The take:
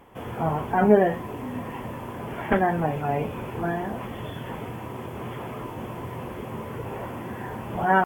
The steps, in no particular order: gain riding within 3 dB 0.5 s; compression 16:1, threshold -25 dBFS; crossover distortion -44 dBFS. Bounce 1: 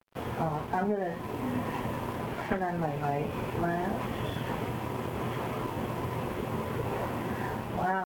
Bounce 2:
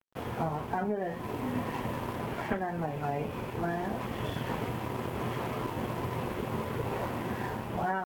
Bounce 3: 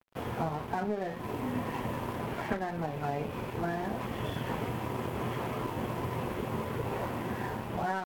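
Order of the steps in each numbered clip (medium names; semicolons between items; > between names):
gain riding > crossover distortion > compression; crossover distortion > compression > gain riding; compression > gain riding > crossover distortion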